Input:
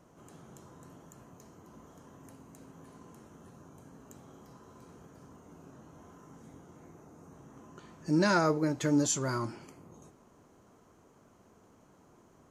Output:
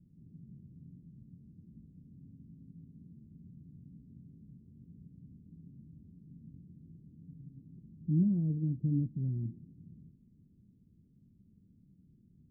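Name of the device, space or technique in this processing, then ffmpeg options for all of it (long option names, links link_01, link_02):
the neighbour's flat through the wall: -filter_complex "[0:a]asettb=1/sr,asplit=3[link_01][link_02][link_03];[link_01]atrim=end=7.234[link_04];[link_02]atrim=start=7.23:end=7.72,asetpts=PTS-STARTPTS,afade=type=in:duration=0.004:curve=qsin,afade=type=out:start_time=0.486:duration=0.004:curve=qsin,aecho=1:1:7:0.53,atrim=end_sample=21609[link_05];[link_03]atrim=start=7.716[link_06];[link_04][link_05]acrossfade=duration=0.004:curve1=hsin:curve2=qsin[link_07];[link_07][link_06]acrossfade=duration=0.004:curve1=qsin:curve2=hsin,lowpass=frequency=210:width=0.5412,lowpass=frequency=210:width=1.3066,equalizer=frequency=180:width_type=o:width=0.77:gain=3,volume=2.5dB"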